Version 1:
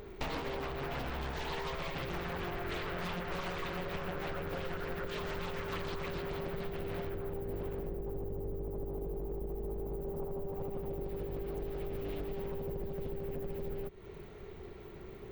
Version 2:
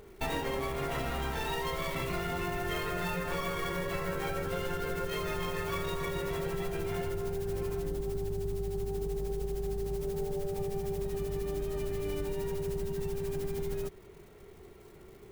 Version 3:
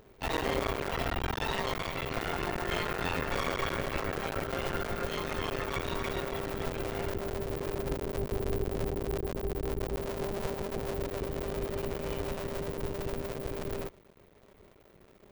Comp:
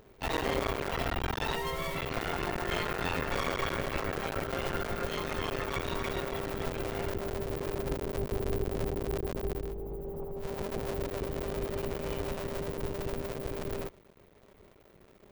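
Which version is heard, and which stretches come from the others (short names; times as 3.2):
3
1.56–1.97 from 2
9.65–10.47 from 1, crossfade 0.24 s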